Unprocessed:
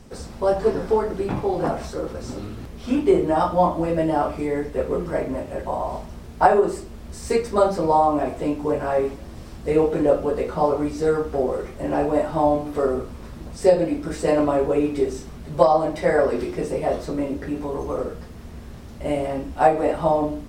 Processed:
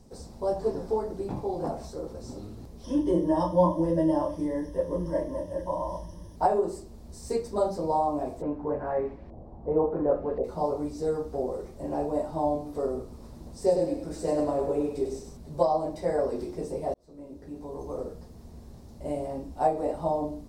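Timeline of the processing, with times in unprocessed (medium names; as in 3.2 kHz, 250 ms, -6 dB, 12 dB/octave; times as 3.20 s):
2.84–6.36 s: rippled EQ curve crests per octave 1.2, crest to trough 16 dB
8.41–10.43 s: LFO low-pass saw up 0.31 Hz -> 1.4 Hz 660–2300 Hz
13.02–15.37 s: thinning echo 100 ms, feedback 45%, level -5.5 dB
16.94–17.99 s: fade in
whole clip: high-order bell 2 kHz -10 dB; trim -8 dB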